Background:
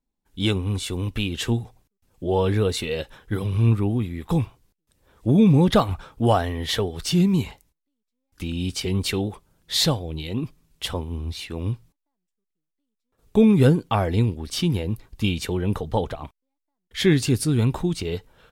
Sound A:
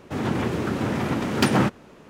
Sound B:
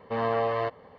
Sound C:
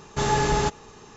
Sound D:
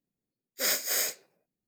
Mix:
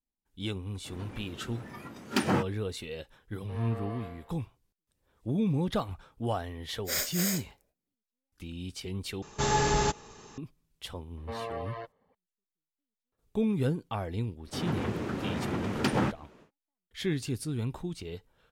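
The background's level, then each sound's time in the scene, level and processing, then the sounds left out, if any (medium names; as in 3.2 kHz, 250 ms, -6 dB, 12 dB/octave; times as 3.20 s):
background -12.5 dB
0.74 s: add A -7 dB + spectral noise reduction 14 dB
3.38 s: add B -17.5 dB + flutter echo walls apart 5.2 m, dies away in 0.78 s
6.28 s: add D -3.5 dB
9.22 s: replace with C -4 dB + treble shelf 5.2 kHz +5 dB
11.17 s: add B -9 dB + reverb removal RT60 0.84 s
14.42 s: add A -8 dB, fades 0.10 s + treble shelf 9 kHz -5 dB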